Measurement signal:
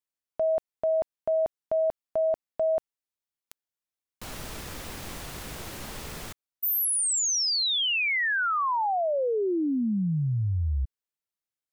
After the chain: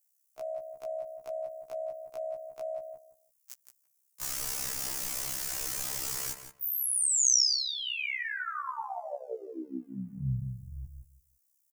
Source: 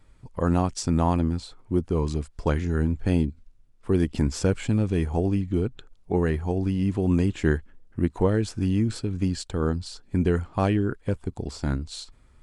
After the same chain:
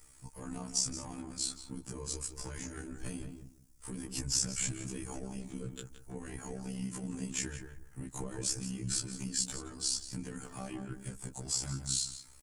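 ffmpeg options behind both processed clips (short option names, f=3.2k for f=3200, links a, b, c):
-filter_complex "[0:a]acrossover=split=140[a][b];[b]acompressor=threshold=-33dB:ratio=10:attack=0.39:release=123:knee=2.83:detection=peak[c];[a][c]amix=inputs=2:normalize=0,asplit=2[d][e];[e]adelay=170,lowpass=f=1.8k:p=1,volume=-6.5dB,asplit=2[f][g];[g]adelay=170,lowpass=f=1.8k:p=1,volume=0.21,asplit=2[h][i];[i]adelay=170,lowpass=f=1.8k:p=1,volume=0.21[j];[f][h][j]amix=inputs=3:normalize=0[k];[d][k]amix=inputs=2:normalize=0,aexciter=amount=6.5:drive=5.3:freq=5.4k,tiltshelf=f=750:g=-5,aecho=1:1:6.7:0.63,tremolo=f=66:d=0.667,acrossover=split=6200[l][m];[m]acompressor=threshold=-31dB:ratio=4:attack=1:release=60[n];[l][n]amix=inputs=2:normalize=0,afftfilt=real='re*1.73*eq(mod(b,3),0)':imag='im*1.73*eq(mod(b,3),0)':win_size=2048:overlap=0.75"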